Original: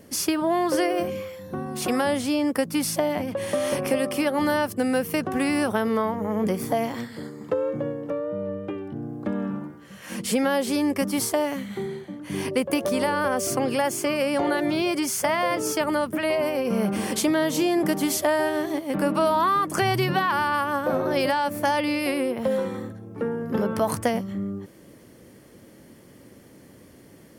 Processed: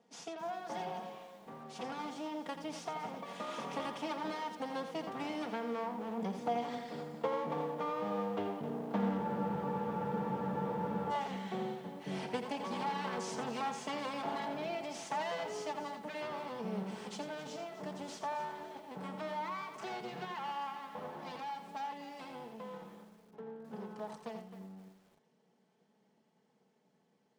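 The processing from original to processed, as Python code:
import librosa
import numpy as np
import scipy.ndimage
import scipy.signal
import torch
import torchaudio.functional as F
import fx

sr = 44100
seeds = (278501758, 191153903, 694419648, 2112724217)

y = fx.lower_of_two(x, sr, delay_ms=4.4)
y = fx.doppler_pass(y, sr, speed_mps=13, closest_m=11.0, pass_at_s=8.99)
y = fx.low_shelf(y, sr, hz=460.0, db=6.5)
y = fx.rider(y, sr, range_db=4, speed_s=0.5)
y = fx.cabinet(y, sr, low_hz=150.0, low_slope=24, high_hz=7200.0, hz=(260.0, 850.0, 3300.0), db=(-10, 7, 4))
y = fx.comb_fb(y, sr, f0_hz=240.0, decay_s=1.0, harmonics='all', damping=0.0, mix_pct=50)
y = y + 10.0 ** (-9.0 / 20.0) * np.pad(y, (int(85 * sr / 1000.0), 0))[:len(y)]
y = fx.spec_freeze(y, sr, seeds[0], at_s=9.24, hold_s=1.86)
y = fx.echo_crushed(y, sr, ms=263, feedback_pct=35, bits=10, wet_db=-12.5)
y = y * 10.0 ** (3.0 / 20.0)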